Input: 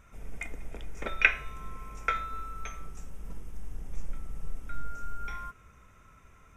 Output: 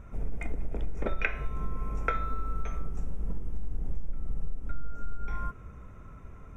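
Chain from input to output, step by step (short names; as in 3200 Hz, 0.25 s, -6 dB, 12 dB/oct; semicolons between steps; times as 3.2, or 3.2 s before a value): tilt shelf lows +9.5 dB, about 1300 Hz; compressor 6:1, threshold -26 dBFS, peak gain reduction 12 dB; gain +2.5 dB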